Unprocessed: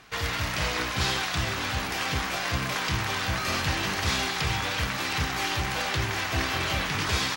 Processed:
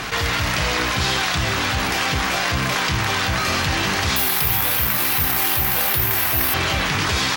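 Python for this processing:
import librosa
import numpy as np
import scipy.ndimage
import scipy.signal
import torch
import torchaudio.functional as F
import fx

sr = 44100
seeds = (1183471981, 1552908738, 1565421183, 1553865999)

y = fx.resample_bad(x, sr, factor=3, down='none', up='zero_stuff', at=(4.16, 6.54))
y = fx.env_flatten(y, sr, amount_pct=70)
y = y * 10.0 ** (1.0 / 20.0)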